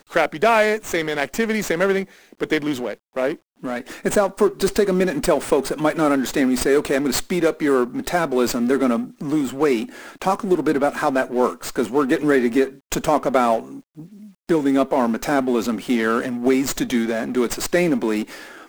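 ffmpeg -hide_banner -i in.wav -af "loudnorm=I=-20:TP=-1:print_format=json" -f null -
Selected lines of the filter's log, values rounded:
"input_i" : "-20.6",
"input_tp" : "-3.6",
"input_lra" : "1.9",
"input_thresh" : "-30.9",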